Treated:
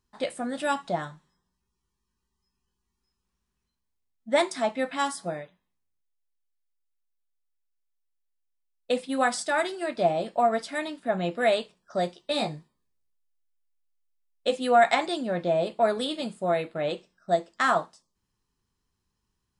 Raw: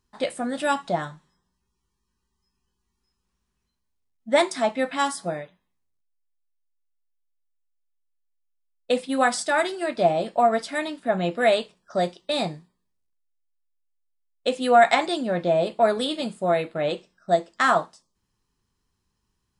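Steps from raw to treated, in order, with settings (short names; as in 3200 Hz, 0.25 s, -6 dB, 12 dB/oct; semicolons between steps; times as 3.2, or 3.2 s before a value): 12.15–14.56 doubler 14 ms -4.5 dB; gain -3.5 dB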